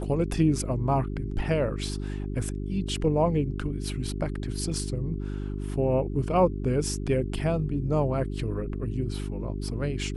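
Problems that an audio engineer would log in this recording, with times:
mains hum 50 Hz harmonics 8 −32 dBFS

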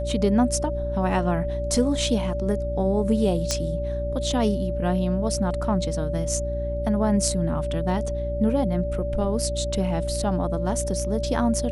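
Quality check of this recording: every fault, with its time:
mains hum 60 Hz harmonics 6 −29 dBFS
whistle 580 Hz −28 dBFS
0:03.51: click −9 dBFS

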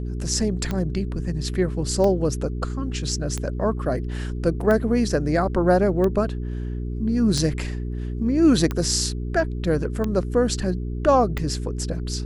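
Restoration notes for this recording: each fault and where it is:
mains hum 60 Hz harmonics 7 −28 dBFS
scratch tick 45 rpm −13 dBFS
0:04.61: drop-out 2.6 ms

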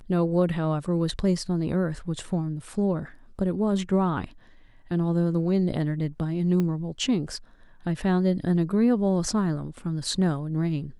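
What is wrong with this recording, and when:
0:06.60: click −16 dBFS

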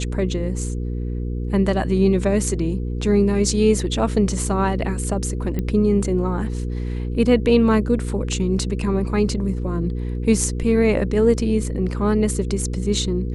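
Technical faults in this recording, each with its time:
mains hum 60 Hz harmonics 8 −25 dBFS
0:05.59: click −13 dBFS

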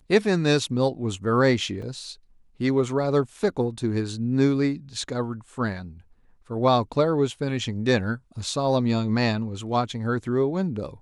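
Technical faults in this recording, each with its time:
0:01.82: drop-out 4.6 ms

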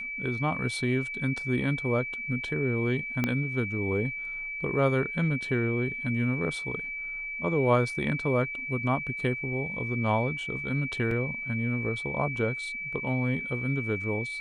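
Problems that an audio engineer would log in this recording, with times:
whistle 2,300 Hz −33 dBFS
0:03.24: click −13 dBFS
0:11.11: drop-out 3 ms

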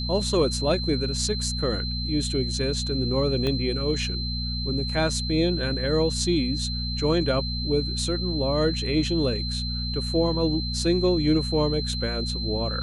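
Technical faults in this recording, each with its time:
mains hum 60 Hz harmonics 4 −30 dBFS
whistle 4,100 Hz −31 dBFS
0:03.47: click −15 dBFS

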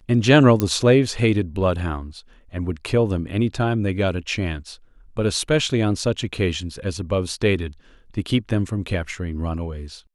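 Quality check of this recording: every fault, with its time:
0:00.60: click −7 dBFS

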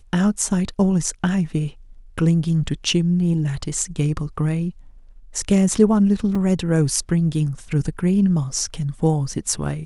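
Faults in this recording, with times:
0:06.35: drop-out 3.9 ms

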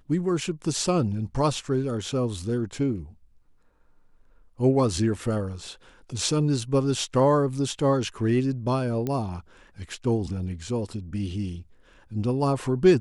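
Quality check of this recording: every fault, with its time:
0:09.07: click −16 dBFS

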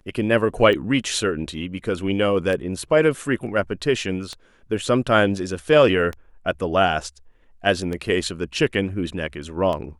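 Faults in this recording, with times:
scratch tick 33 1/3 rpm −16 dBFS

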